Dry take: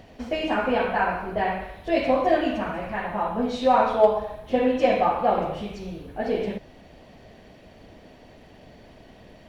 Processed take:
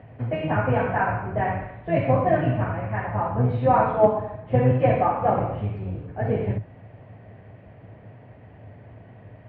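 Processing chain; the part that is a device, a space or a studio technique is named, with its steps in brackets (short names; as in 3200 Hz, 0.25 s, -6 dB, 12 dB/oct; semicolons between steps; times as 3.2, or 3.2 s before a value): sub-octave bass pedal (octaver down 1 oct, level +2 dB; speaker cabinet 79–2200 Hz, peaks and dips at 110 Hz +10 dB, 230 Hz -3 dB, 350 Hz -4 dB)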